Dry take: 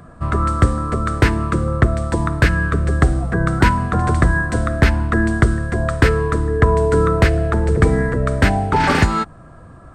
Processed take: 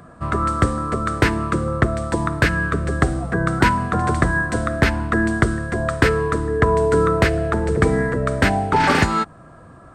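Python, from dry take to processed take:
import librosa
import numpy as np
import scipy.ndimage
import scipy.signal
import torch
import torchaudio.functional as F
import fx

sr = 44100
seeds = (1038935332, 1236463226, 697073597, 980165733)

y = fx.low_shelf(x, sr, hz=82.0, db=-12.0)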